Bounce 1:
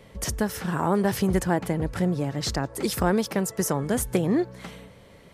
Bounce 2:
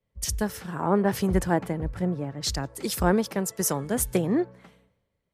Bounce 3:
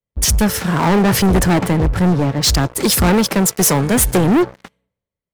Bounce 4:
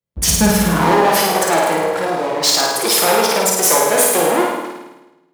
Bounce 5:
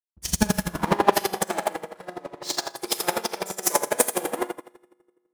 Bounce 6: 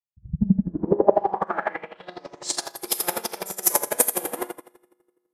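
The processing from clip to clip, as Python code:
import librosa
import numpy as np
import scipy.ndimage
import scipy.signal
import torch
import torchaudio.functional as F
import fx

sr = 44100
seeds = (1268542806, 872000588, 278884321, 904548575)

y1 = fx.band_widen(x, sr, depth_pct=100)
y1 = y1 * 10.0 ** (-1.5 / 20.0)
y2 = fx.leveller(y1, sr, passes=5)
y3 = fx.filter_sweep_highpass(y2, sr, from_hz=66.0, to_hz=540.0, start_s=0.07, end_s=1.13, q=1.2)
y3 = fx.room_flutter(y3, sr, wall_m=9.1, rt60_s=1.0)
y3 = fx.room_shoebox(y3, sr, seeds[0], volume_m3=210.0, walls='mixed', distance_m=0.74)
y3 = y3 * 10.0 ** (-1.5 / 20.0)
y4 = fx.rev_fdn(y3, sr, rt60_s=2.5, lf_ratio=1.2, hf_ratio=0.7, size_ms=17.0, drr_db=6.5)
y4 = fx.chopper(y4, sr, hz=12.0, depth_pct=65, duty_pct=15)
y4 = fx.upward_expand(y4, sr, threshold_db=-35.0, expansion=2.5)
y5 = fx.filter_sweep_lowpass(y4, sr, from_hz=130.0, to_hz=12000.0, start_s=0.3, end_s=2.7, q=4.0)
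y5 = y5 * 10.0 ** (-3.0 / 20.0)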